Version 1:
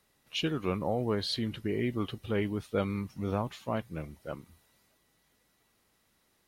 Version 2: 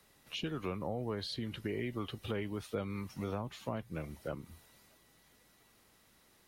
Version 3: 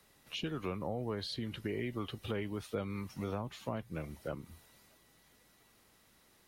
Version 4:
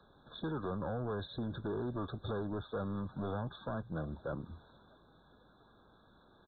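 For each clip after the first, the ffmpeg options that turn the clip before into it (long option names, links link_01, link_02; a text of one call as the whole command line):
ffmpeg -i in.wav -filter_complex "[0:a]acrossover=split=89|450[link_01][link_02][link_03];[link_01]acompressor=threshold=-57dB:ratio=4[link_04];[link_02]acompressor=threshold=-46dB:ratio=4[link_05];[link_03]acompressor=threshold=-47dB:ratio=4[link_06];[link_04][link_05][link_06]amix=inputs=3:normalize=0,volume=5dB" out.wav
ffmpeg -i in.wav -af anull out.wav
ffmpeg -i in.wav -af "asoftclip=type=tanh:threshold=-39dB,aresample=8000,aresample=44100,afftfilt=real='re*eq(mod(floor(b*sr/1024/1700),2),0)':imag='im*eq(mod(floor(b*sr/1024/1700),2),0)':win_size=1024:overlap=0.75,volume=6dB" out.wav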